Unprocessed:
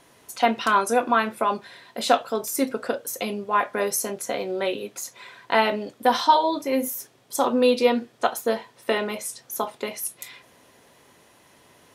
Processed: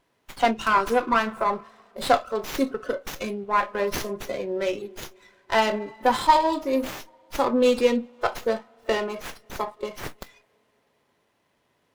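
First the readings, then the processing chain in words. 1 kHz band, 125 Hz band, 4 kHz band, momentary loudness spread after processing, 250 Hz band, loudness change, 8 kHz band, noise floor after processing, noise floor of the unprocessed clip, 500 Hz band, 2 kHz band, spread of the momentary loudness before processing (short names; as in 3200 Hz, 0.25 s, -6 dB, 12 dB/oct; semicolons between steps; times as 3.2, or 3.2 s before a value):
-0.5 dB, n/a, -2.5 dB, 15 LU, -0.5 dB, -0.5 dB, -9.0 dB, -70 dBFS, -57 dBFS, -0.5 dB, -1.0 dB, 12 LU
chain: spring tank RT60 3.6 s, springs 55/59 ms, chirp 40 ms, DRR 15 dB; spectral noise reduction 14 dB; running maximum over 5 samples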